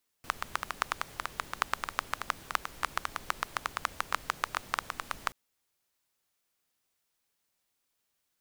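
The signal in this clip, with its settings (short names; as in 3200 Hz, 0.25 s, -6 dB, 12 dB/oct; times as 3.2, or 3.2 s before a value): rain from filtered ticks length 5.08 s, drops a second 9.3, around 1200 Hz, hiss -12.5 dB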